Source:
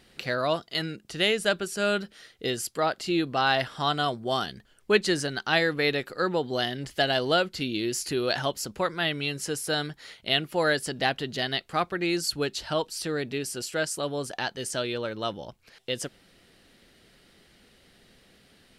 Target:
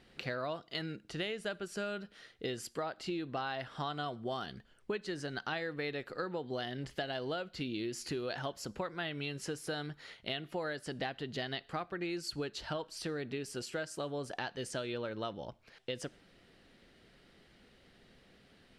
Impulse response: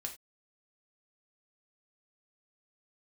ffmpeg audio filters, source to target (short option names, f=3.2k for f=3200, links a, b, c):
-filter_complex "[0:a]aemphasis=mode=reproduction:type=50kf,acompressor=threshold=-31dB:ratio=10,asplit=2[a][b];[1:a]atrim=start_sample=2205,asetrate=26460,aresample=44100[c];[b][c]afir=irnorm=-1:irlink=0,volume=-18.5dB[d];[a][d]amix=inputs=2:normalize=0,volume=-4dB"